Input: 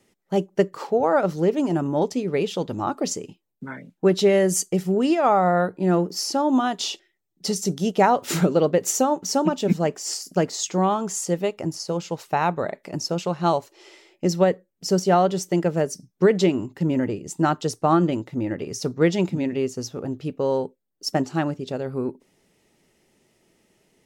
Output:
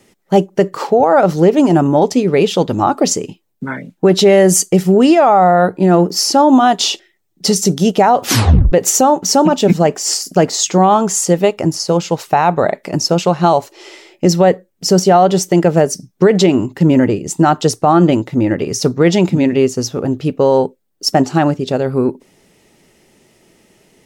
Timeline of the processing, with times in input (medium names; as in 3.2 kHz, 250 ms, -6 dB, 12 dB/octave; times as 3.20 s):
8.24 s: tape stop 0.48 s
whole clip: dynamic bell 750 Hz, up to +5 dB, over -33 dBFS, Q 3.1; loudness maximiser +13 dB; trim -1 dB